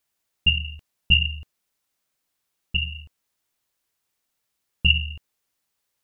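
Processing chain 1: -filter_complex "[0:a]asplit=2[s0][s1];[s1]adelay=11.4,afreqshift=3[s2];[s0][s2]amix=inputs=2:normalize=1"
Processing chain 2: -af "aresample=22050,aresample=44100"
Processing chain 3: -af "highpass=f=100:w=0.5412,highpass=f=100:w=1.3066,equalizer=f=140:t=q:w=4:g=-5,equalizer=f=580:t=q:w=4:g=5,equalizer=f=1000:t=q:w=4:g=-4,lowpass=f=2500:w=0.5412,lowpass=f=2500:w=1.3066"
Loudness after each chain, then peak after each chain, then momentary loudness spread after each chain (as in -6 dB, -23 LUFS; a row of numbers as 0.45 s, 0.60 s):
-26.0 LUFS, -22.0 LUFS, -28.0 LUFS; -8.5 dBFS, -4.0 dBFS, -10.5 dBFS; 15 LU, 17 LU, 18 LU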